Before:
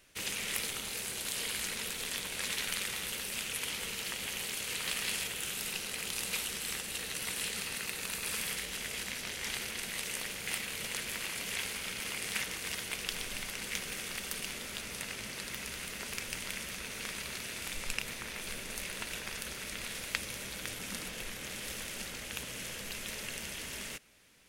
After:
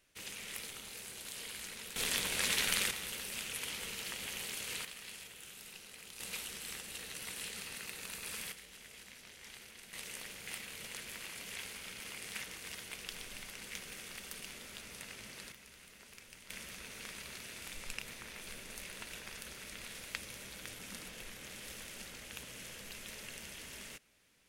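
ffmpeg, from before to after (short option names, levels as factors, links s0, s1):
-af "asetnsamples=n=441:p=0,asendcmd='1.96 volume volume 3dB;2.91 volume volume -4dB;4.85 volume volume -14dB;6.2 volume volume -7dB;8.52 volume volume -15dB;9.93 volume volume -8dB;15.52 volume volume -16dB;16.5 volume volume -7dB',volume=0.355"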